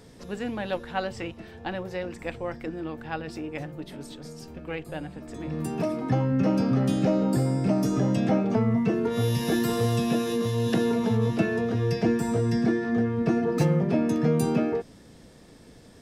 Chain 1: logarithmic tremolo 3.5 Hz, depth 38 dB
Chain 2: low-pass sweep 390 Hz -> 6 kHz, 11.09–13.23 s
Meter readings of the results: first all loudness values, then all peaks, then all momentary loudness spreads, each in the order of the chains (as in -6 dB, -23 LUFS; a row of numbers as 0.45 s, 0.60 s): -33.0 LUFS, -24.0 LUFS; -12.5 dBFS, -8.0 dBFS; 18 LU, 13 LU